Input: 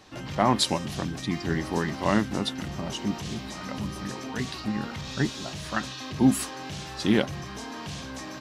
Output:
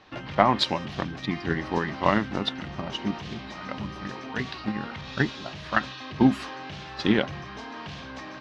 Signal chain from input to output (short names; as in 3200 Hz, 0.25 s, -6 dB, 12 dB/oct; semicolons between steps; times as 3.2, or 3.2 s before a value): tilt shelf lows -4 dB, about 680 Hz; transient shaper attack +7 dB, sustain +2 dB; air absorption 250 m